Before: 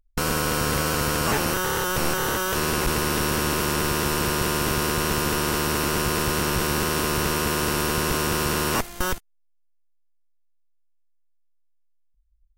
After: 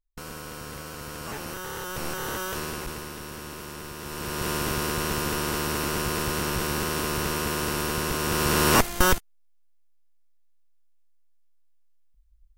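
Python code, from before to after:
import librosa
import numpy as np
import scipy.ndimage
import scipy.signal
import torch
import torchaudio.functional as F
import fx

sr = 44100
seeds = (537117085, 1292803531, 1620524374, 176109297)

y = fx.gain(x, sr, db=fx.line((0.95, -15.0), (2.44, -6.0), (3.16, -15.0), (3.97, -15.0), (4.5, -4.0), (8.18, -4.0), (8.8, 5.5)))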